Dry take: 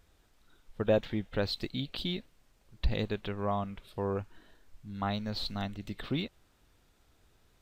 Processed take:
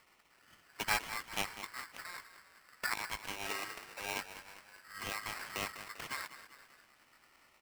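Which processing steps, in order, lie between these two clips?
gate on every frequency bin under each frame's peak −15 dB weak
low-pass filter 1,400 Hz 24 dB per octave
echo with shifted repeats 197 ms, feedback 54%, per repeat −35 Hz, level −12.5 dB
ring modulator with a square carrier 1,600 Hz
level +8 dB

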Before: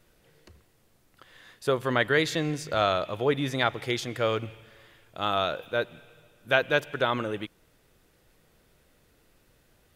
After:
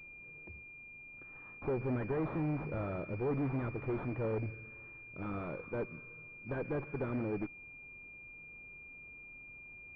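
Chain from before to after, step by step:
Butterworth band-reject 880 Hz, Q 0.62
tube saturation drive 33 dB, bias 0.35
switching amplifier with a slow clock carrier 2,400 Hz
level +3 dB

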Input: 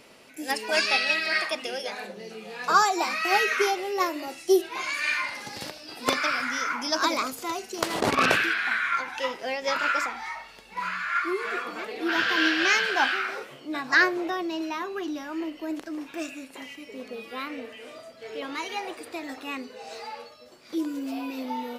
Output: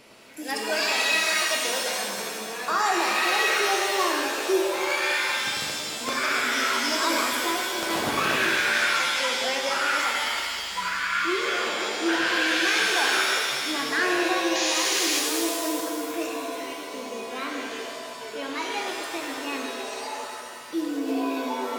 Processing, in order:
sound drawn into the spectrogram noise, 0:14.55–0:15.20, 1,700–7,200 Hz −27 dBFS
brickwall limiter −17.5 dBFS, peak gain reduction 9 dB
reverb with rising layers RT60 2 s, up +7 semitones, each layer −2 dB, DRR 1 dB

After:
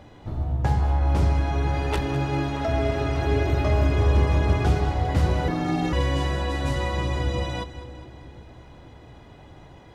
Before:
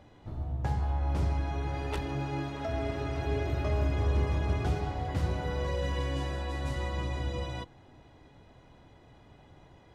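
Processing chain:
echo with a time of its own for lows and highs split 430 Hz, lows 505 ms, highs 203 ms, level −14 dB
0:05.48–0:05.93: ring modulation 240 Hz
level +8.5 dB

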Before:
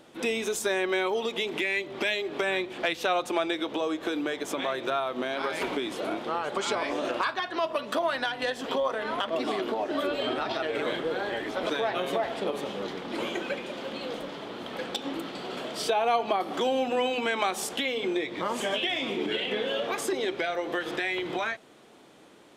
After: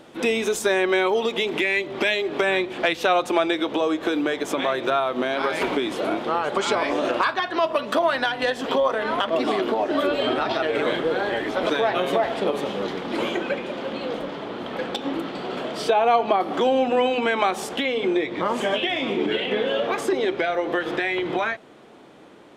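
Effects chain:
high-shelf EQ 3,900 Hz −5 dB, from 0:13.35 −11.5 dB
level +7 dB

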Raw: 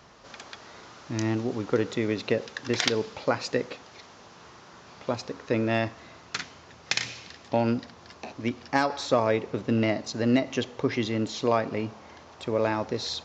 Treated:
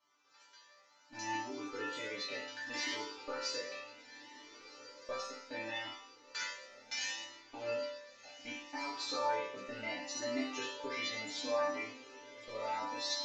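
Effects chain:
high-pass filter 480 Hz 6 dB per octave
noise gate −39 dBFS, range −13 dB
brickwall limiter −19 dBFS, peak gain reduction 11 dB
resonators tuned to a chord G3 sus4, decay 0.69 s
feedback delay with all-pass diffusion 1,482 ms, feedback 44%, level −14.5 dB
feedback delay network reverb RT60 0.49 s, low-frequency decay 0.8×, high-frequency decay 0.8×, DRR −2.5 dB
flanger whose copies keep moving one way rising 0.68 Hz
level +15.5 dB

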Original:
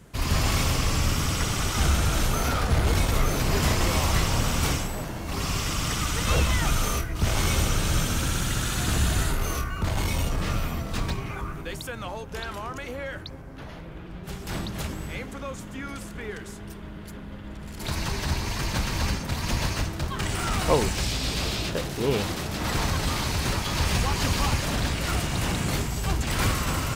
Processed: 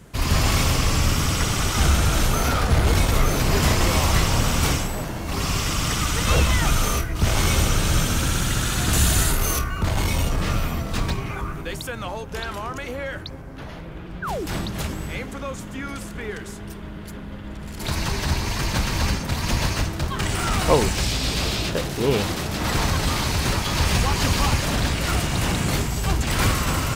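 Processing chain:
0:08.93–0:09.59: high-shelf EQ 5,200 Hz +9 dB
0:14.22–0:14.46: sound drawn into the spectrogram fall 270–1,700 Hz −32 dBFS
level +4 dB

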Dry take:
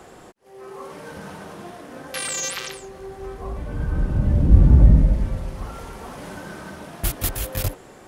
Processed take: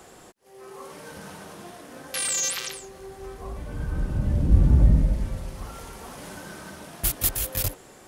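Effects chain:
high-shelf EQ 3,500 Hz +9 dB
level −5 dB

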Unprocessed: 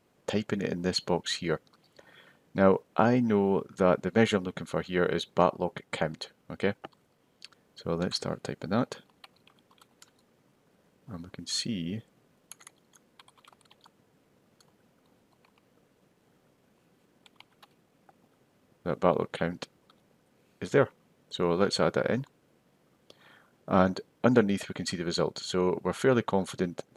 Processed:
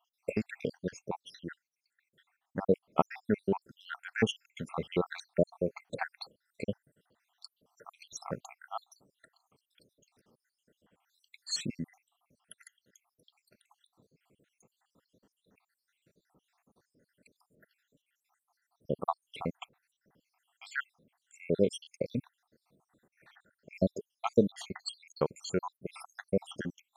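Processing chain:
time-frequency cells dropped at random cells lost 77%
0:00.77–0:02.71: expander for the loud parts 1.5 to 1, over −38 dBFS

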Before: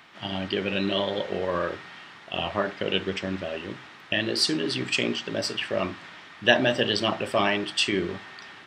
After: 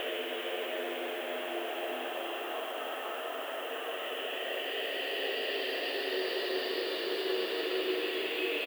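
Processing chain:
dead-zone distortion −37 dBFS
single-sideband voice off tune +62 Hz 280–3,400 Hz
on a send: single-tap delay 1,152 ms −8 dB
on the sum: downward compressor, threshold −28 dBFS, peak gain reduction 13.5 dB
extreme stretch with random phases 4.9×, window 1.00 s, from 0:03.08
background noise violet −53 dBFS

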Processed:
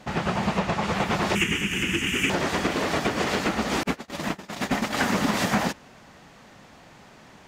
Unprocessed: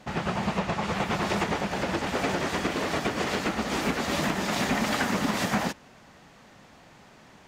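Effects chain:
0:01.35–0:02.30: drawn EQ curve 370 Hz 0 dB, 620 Hz −25 dB, 2,900 Hz +13 dB, 4,100 Hz −17 dB, 6,600 Hz +7 dB
0:03.83–0:04.97: noise gate −25 dBFS, range −46 dB
level +3 dB

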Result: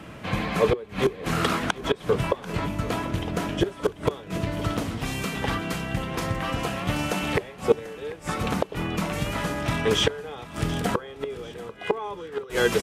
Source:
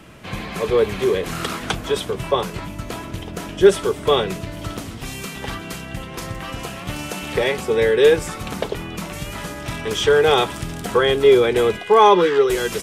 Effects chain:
high-pass filter 58 Hz 6 dB per octave
high-shelf EQ 3,500 Hz −8 dB
gate with flip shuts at −11 dBFS, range −25 dB
notch filter 380 Hz, Q 12
repeating echo 740 ms, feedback 45%, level −17.5 dB
level +3.5 dB

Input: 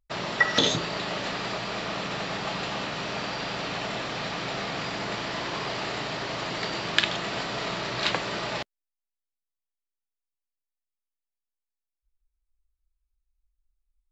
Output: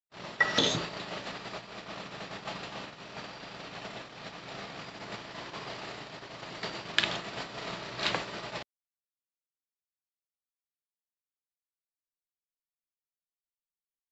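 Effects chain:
noise gate −30 dBFS, range −41 dB
level −4 dB

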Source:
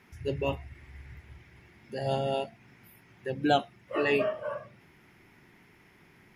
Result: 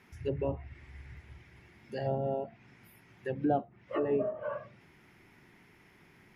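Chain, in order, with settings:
treble cut that deepens with the level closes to 640 Hz, closed at −25 dBFS
level −1.5 dB

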